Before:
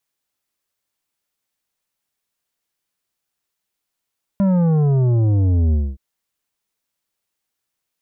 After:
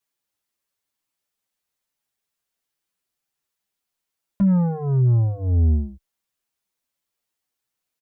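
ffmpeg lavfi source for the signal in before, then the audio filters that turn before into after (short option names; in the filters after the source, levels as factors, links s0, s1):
-f lavfi -i "aevalsrc='0.2*clip((1.57-t)/0.24,0,1)*tanh(2.99*sin(2*PI*200*1.57/log(65/200)*(exp(log(65/200)*t/1.57)-1)))/tanh(2.99)':d=1.57:s=44100"
-filter_complex "[0:a]asplit=2[s0][s1];[s1]adelay=7.3,afreqshift=-2.7[s2];[s0][s2]amix=inputs=2:normalize=1"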